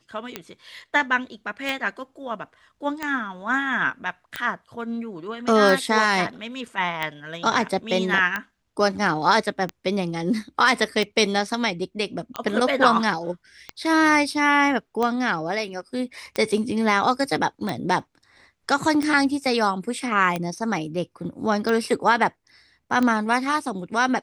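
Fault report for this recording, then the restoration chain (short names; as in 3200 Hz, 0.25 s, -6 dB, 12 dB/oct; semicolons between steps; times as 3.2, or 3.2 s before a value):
tick 45 rpm -12 dBFS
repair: de-click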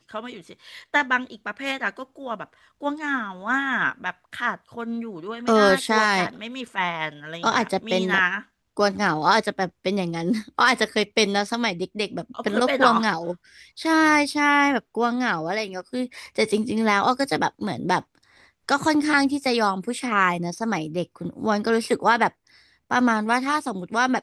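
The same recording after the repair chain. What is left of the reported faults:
none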